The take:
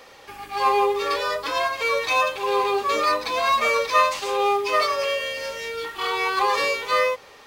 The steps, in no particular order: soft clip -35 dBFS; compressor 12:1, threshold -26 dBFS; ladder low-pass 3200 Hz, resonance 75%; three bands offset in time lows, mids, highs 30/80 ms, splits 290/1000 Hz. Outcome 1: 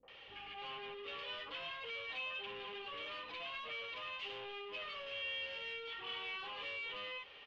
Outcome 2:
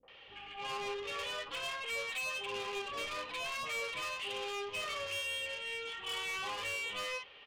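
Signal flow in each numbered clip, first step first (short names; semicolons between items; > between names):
three bands offset in time > compressor > soft clip > ladder low-pass; ladder low-pass > compressor > soft clip > three bands offset in time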